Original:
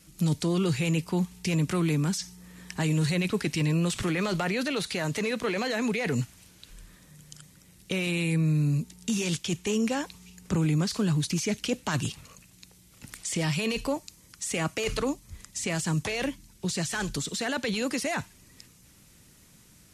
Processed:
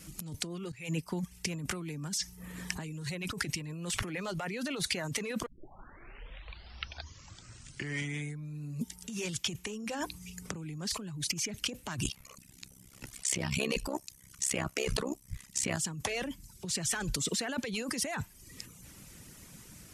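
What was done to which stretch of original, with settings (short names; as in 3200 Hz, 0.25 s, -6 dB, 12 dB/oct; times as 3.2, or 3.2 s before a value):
0.72–1.98 fade in linear, from -21 dB
5.46 tape start 3.13 s
9.84–10.53 notches 50/100/150/200/250/300/350/400 Hz
12.04–15.77 AM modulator 66 Hz, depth 90%
whole clip: reverb removal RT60 0.58 s; bell 3900 Hz -3.5 dB 0.53 oct; negative-ratio compressor -36 dBFS, ratio -1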